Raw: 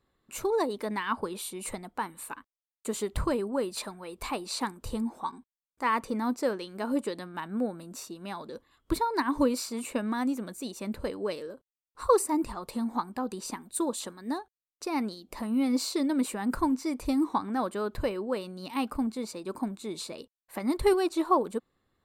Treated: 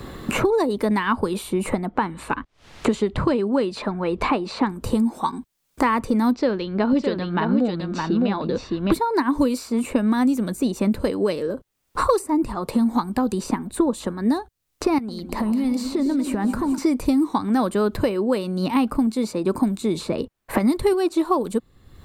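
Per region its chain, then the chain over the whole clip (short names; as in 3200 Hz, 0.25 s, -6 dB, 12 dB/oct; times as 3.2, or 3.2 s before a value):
1.86–4.71 LPF 3800 Hz + upward compressor, threshold -51 dBFS
6.31–8.92 LPF 4400 Hz 24 dB/oct + echo 0.613 s -6.5 dB
14.98–16.78 compressor, threshold -41 dBFS + echo with dull and thin repeats by turns 0.104 s, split 1100 Hz, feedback 68%, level -9.5 dB
whole clip: low shelf 360 Hz +8.5 dB; three-band squash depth 100%; gain +5 dB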